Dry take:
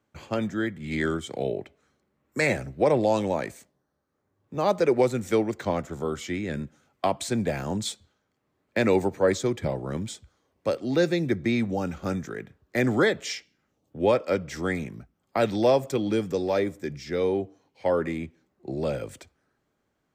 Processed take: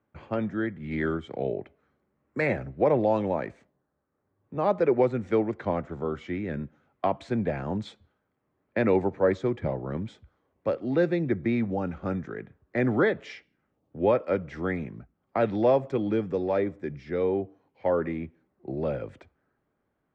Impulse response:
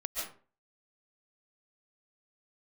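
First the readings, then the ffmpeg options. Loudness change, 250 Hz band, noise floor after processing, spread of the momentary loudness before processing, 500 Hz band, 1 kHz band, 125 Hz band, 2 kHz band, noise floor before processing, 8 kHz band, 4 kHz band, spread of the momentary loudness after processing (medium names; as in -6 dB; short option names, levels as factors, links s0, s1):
-1.0 dB, -1.0 dB, -77 dBFS, 14 LU, -1.0 dB, -1.0 dB, -1.0 dB, -3.5 dB, -76 dBFS, under -20 dB, -12.0 dB, 14 LU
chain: -af "lowpass=2000,volume=0.891"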